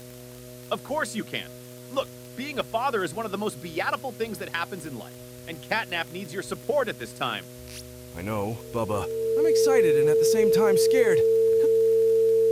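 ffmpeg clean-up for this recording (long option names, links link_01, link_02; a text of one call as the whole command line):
ffmpeg -i in.wav -af "adeclick=threshold=4,bandreject=frequency=123.8:width_type=h:width=4,bandreject=frequency=247.6:width_type=h:width=4,bandreject=frequency=371.4:width_type=h:width=4,bandreject=frequency=495.2:width_type=h:width=4,bandreject=frequency=619:width_type=h:width=4,bandreject=frequency=450:width=30,afwtdn=0.0035" out.wav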